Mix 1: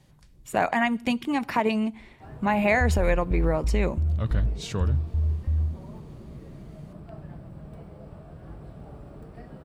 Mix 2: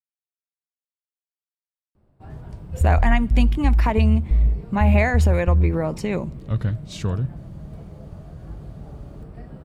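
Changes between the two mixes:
speech: entry +2.30 s; master: add bass shelf 180 Hz +8.5 dB

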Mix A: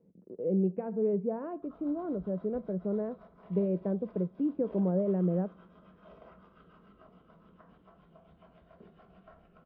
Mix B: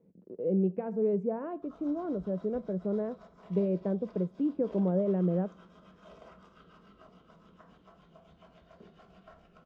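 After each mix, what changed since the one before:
master: remove distance through air 340 m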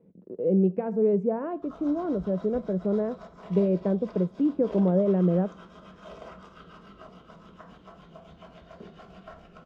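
speech +5.5 dB; background +9.0 dB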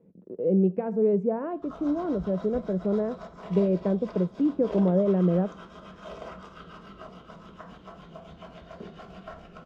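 background +3.5 dB

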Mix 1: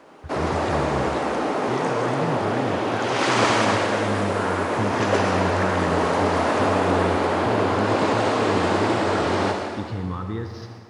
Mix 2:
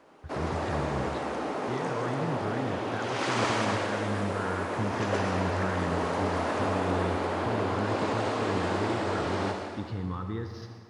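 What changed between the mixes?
speech -5.0 dB; background -8.5 dB

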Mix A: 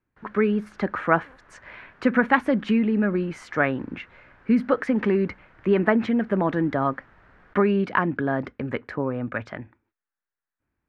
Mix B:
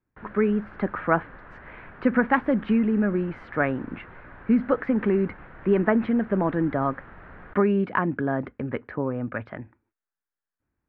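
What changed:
background +11.5 dB; master: add distance through air 410 m

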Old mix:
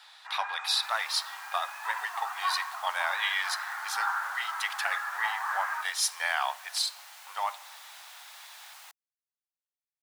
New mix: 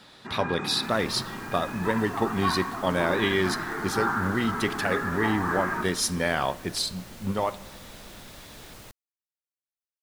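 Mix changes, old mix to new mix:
first sound: send +6.5 dB; master: remove elliptic high-pass 780 Hz, stop band 60 dB

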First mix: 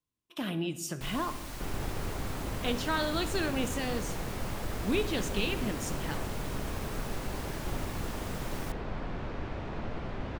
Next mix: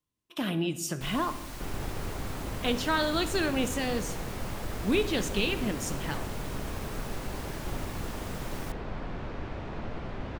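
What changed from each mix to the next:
speech +3.5 dB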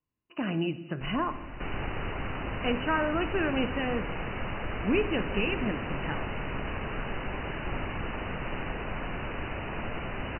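second sound: remove tape spacing loss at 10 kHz 44 dB; master: add brick-wall FIR low-pass 3 kHz

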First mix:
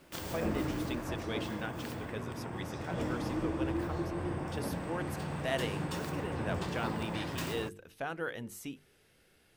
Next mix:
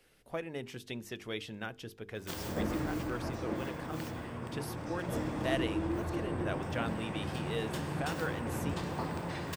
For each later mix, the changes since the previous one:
background: entry +2.15 s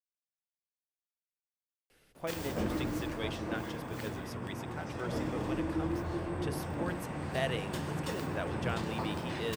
speech: entry +1.90 s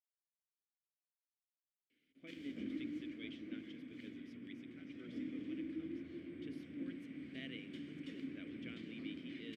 master: add vowel filter i

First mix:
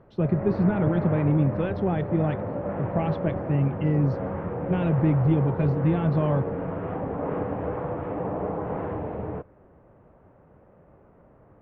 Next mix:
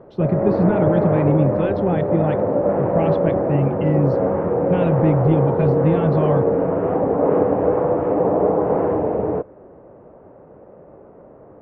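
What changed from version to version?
speech +4.0 dB; background: add peaking EQ 460 Hz +14 dB 2.7 oct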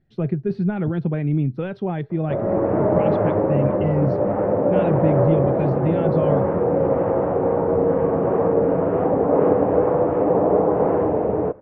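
speech -3.0 dB; background: entry +2.10 s

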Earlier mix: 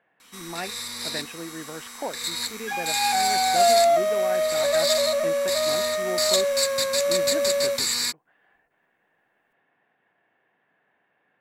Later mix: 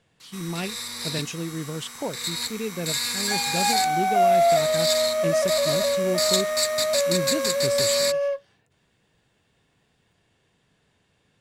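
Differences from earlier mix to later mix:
speech: remove cabinet simulation 350–2300 Hz, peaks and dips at 440 Hz -4 dB, 750 Hz +5 dB, 1.7 kHz +6 dB; second sound: entry +0.60 s

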